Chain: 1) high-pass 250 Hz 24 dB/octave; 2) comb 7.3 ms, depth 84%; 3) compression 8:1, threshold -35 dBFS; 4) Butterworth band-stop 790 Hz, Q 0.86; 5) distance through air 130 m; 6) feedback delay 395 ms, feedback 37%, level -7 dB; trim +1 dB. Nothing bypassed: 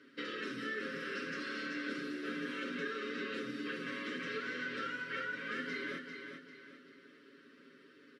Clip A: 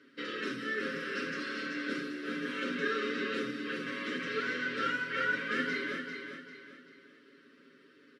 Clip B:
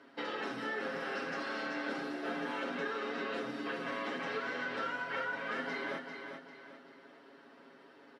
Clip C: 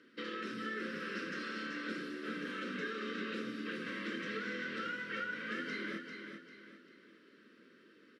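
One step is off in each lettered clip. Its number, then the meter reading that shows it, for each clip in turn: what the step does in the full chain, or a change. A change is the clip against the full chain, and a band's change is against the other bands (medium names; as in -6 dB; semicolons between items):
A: 3, mean gain reduction 3.0 dB; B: 4, 1 kHz band +7.0 dB; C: 2, 125 Hz band +2.5 dB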